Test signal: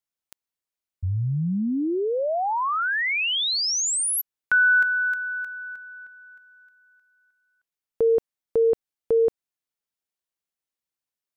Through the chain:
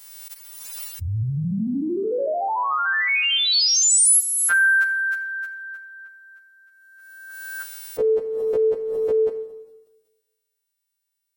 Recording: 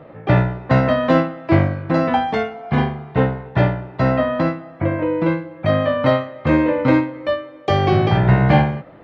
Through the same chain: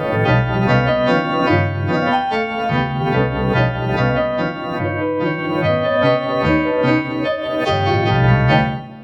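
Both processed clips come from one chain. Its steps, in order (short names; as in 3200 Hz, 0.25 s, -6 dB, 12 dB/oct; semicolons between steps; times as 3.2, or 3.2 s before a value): frequency quantiser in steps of 2 st; Schroeder reverb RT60 1.2 s, combs from 28 ms, DRR 10 dB; backwards sustainer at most 28 dB/s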